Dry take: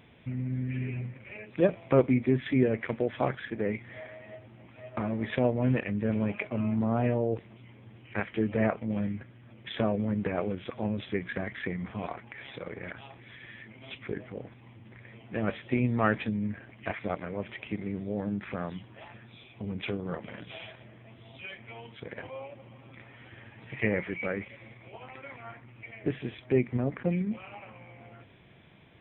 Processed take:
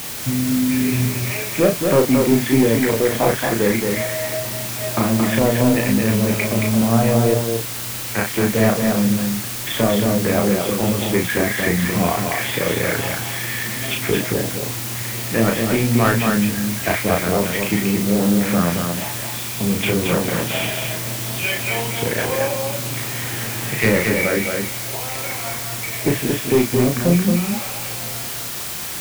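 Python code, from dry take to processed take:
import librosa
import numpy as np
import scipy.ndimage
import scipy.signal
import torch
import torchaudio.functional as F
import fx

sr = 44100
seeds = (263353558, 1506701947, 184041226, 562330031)

p1 = scipy.signal.sosfilt(scipy.signal.butter(4, 74.0, 'highpass', fs=sr, output='sos'), x)
p2 = fx.rider(p1, sr, range_db=10, speed_s=0.5)
p3 = p1 + F.gain(torch.from_numpy(p2), 1.0).numpy()
p4 = 10.0 ** (-14.0 / 20.0) * np.tanh(p3 / 10.0 ** (-14.0 / 20.0))
p5 = fx.quant_dither(p4, sr, seeds[0], bits=6, dither='triangular')
p6 = fx.doubler(p5, sr, ms=35.0, db=-4)
p7 = p6 + 10.0 ** (-4.5 / 20.0) * np.pad(p6, (int(224 * sr / 1000.0), 0))[:len(p6)]
y = F.gain(torch.from_numpy(p7), 5.0).numpy()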